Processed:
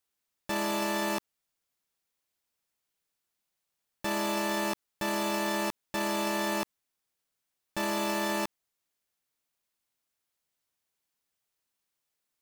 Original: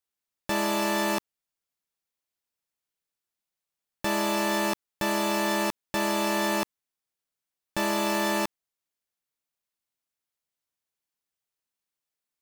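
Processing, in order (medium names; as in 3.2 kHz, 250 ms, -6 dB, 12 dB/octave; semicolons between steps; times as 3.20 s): peak limiter -26.5 dBFS, peak gain reduction 11 dB; trim +4.5 dB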